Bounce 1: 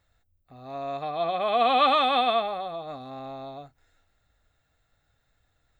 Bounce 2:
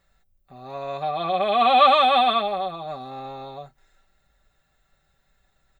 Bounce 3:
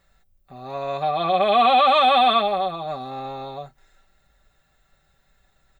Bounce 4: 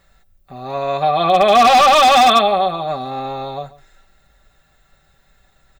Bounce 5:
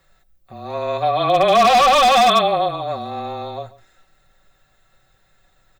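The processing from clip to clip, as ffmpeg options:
-af "aecho=1:1:5.2:0.68,volume=2.5dB"
-af "alimiter=limit=-12dB:level=0:latency=1:release=31,volume=3.5dB"
-filter_complex "[0:a]asplit=2[a][b];[b]adelay=139.9,volume=-19dB,highshelf=f=4k:g=-3.15[c];[a][c]amix=inputs=2:normalize=0,aeval=exprs='0.251*(abs(mod(val(0)/0.251+3,4)-2)-1)':c=same,volume=7dB"
-af "afreqshift=-24,volume=-2.5dB"

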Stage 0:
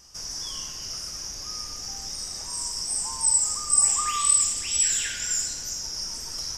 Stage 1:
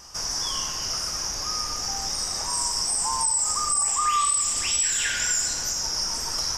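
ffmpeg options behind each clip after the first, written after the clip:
-filter_complex "[0:a]equalizer=f=1k:t=o:w=1.8:g=8,asplit=2[a][b];[b]acompressor=threshold=-29dB:ratio=6,volume=-1dB[c];[a][c]amix=inputs=2:normalize=0,alimiter=limit=-14.5dB:level=0:latency=1:release=62"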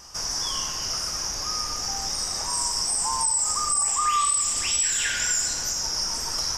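-af anull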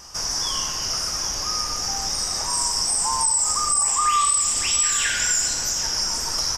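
-af "aecho=1:1:781:0.158,volume=3dB"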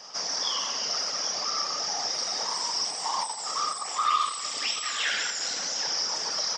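-af "asoftclip=type=tanh:threshold=-19.5dB,afftfilt=real='hypot(re,im)*cos(2*PI*random(0))':imag='hypot(re,im)*sin(2*PI*random(1))':win_size=512:overlap=0.75,highpass=f=240:w=0.5412,highpass=f=240:w=1.3066,equalizer=f=240:t=q:w=4:g=-7,equalizer=f=350:t=q:w=4:g=-9,equalizer=f=1k:t=q:w=4:g=-5,equalizer=f=1.5k:t=q:w=4:g=-5,equalizer=f=2.6k:t=q:w=4:g=-4,lowpass=f=5k:w=0.5412,lowpass=f=5k:w=1.3066,volume=8.5dB"

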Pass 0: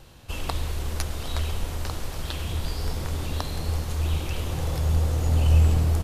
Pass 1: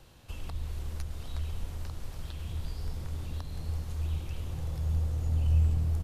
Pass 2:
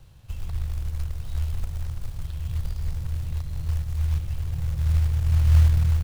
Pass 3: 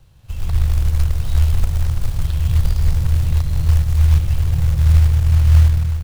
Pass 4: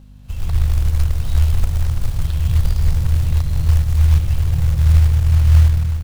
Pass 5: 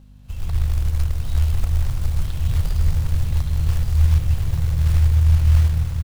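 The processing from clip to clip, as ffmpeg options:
-filter_complex "[0:a]acrossover=split=200[a][b];[b]acompressor=threshold=-48dB:ratio=2[c];[a][c]amix=inputs=2:normalize=0,volume=-6.5dB"
-af "lowshelf=f=180:t=q:w=1.5:g=9.5,acrusher=bits=6:mode=log:mix=0:aa=0.000001,volume=-3dB"
-af "dynaudnorm=f=110:g=7:m=13dB"
-af "aeval=exprs='val(0)+0.01*(sin(2*PI*50*n/s)+sin(2*PI*2*50*n/s)/2+sin(2*PI*3*50*n/s)/3+sin(2*PI*4*50*n/s)/4+sin(2*PI*5*50*n/s)/5)':c=same"
-af "aecho=1:1:1172:0.531,volume=-4dB"

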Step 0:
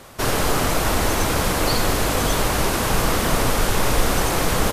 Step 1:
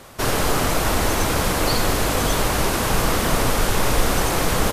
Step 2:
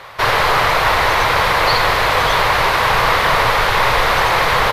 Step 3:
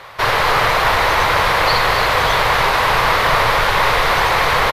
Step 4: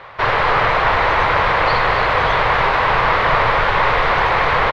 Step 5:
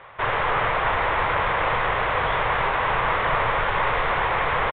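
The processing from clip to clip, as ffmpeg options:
-af anull
-af "equalizer=f=125:t=o:w=1:g=6,equalizer=f=250:t=o:w=1:g=-10,equalizer=f=500:t=o:w=1:g=7,equalizer=f=1k:t=o:w=1:g=12,equalizer=f=2k:t=o:w=1:g=12,equalizer=f=4k:t=o:w=1:g=10,equalizer=f=8k:t=o:w=1:g=-7,volume=-3.5dB"
-af "aecho=1:1:250.7|282.8:0.251|0.282,volume=-1dB"
-af "lowpass=2.7k"
-af "aresample=8000,aresample=44100,volume=-7dB"

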